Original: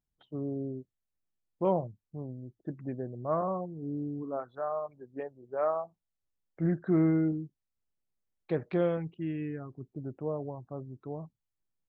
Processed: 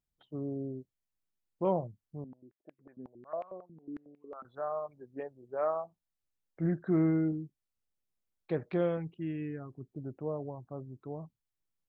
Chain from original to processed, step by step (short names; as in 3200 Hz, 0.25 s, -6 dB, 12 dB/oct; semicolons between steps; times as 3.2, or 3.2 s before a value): 2.24–4.45 stepped band-pass 11 Hz 230–2400 Hz; gain -2 dB